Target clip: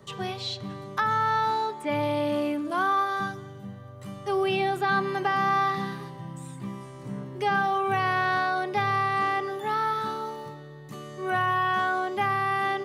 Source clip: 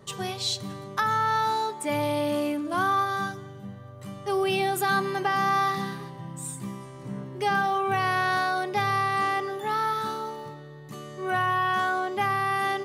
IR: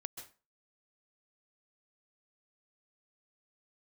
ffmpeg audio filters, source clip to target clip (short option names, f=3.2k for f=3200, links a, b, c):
-filter_complex "[0:a]asettb=1/sr,asplit=3[a][b][c];[a]atrim=end=2.704[d];[b]atrim=start=2.7:end=3.2,asetpts=PTS-STARTPTS,afade=t=in:d=0.004:c=qsin,afade=t=out:st=0.496:d=0.004:c=qsin,highpass=250[e];[c]atrim=start=3.196[f];[d][e]acrossfade=d=0.004:c1=hsin:c2=qsin[g];[g][f]acrossfade=d=0.004:c1=qsin:c2=hsin,acrossover=split=320|870|4200[h][i][j][k];[k]acompressor=threshold=-54dB:ratio=6[l];[h][i][j][l]amix=inputs=4:normalize=0"